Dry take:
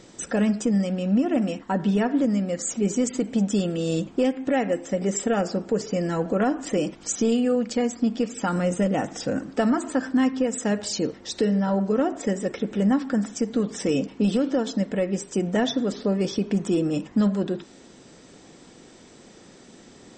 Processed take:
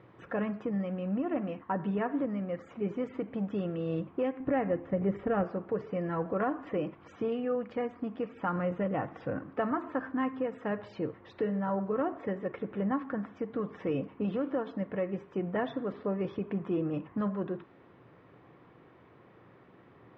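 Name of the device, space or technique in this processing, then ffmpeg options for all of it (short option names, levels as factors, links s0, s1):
bass cabinet: -filter_complex "[0:a]highpass=66,equalizer=f=85:t=q:w=4:g=4,equalizer=f=120:t=q:w=4:g=9,equalizer=f=230:t=q:w=4:g=-8,equalizer=f=1100:t=q:w=4:g=9,lowpass=f=2400:w=0.5412,lowpass=f=2400:w=1.3066,asettb=1/sr,asplit=3[s0][s1][s2];[s0]atrim=end=4.404[s3];[s1]atrim=start=4.4:end=5.44,asetpts=PTS-STARTPTS,afade=t=in:d=0.004:c=qsin,afade=t=out:st=1.036:d=0.004:c=qsin,aemphasis=mode=reproduction:type=bsi[s4];[s2]atrim=start=5.436[s5];[s3][s4]acrossfade=d=0.004:c1=hsin:c2=qsin[s6];[s6][s5]acrossfade=d=0.004:c1=qsin:c2=hsin,volume=0.422"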